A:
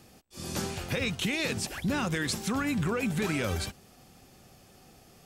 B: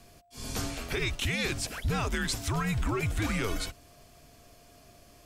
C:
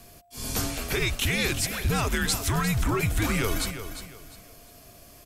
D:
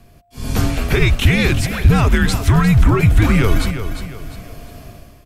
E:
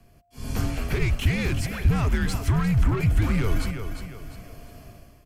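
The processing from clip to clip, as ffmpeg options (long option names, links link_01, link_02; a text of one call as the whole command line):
ffmpeg -i in.wav -af "afreqshift=-110,aeval=exprs='val(0)+0.000794*sin(2*PI*700*n/s)':channel_layout=same" out.wav
ffmpeg -i in.wav -af "equalizer=frequency=13000:width_type=o:width=0.77:gain=9.5,aecho=1:1:352|704|1056:0.299|0.0866|0.0251,volume=4dB" out.wav
ffmpeg -i in.wav -af "bass=frequency=250:gain=7,treble=frequency=4000:gain=-10,dynaudnorm=framelen=130:gausssize=7:maxgain=13dB" out.wav
ffmpeg -i in.wav -filter_complex "[0:a]bandreject=frequency=3700:width=8.2,acrossover=split=170[link_01][link_02];[link_02]asoftclip=type=tanh:threshold=-16dB[link_03];[link_01][link_03]amix=inputs=2:normalize=0,volume=-8.5dB" out.wav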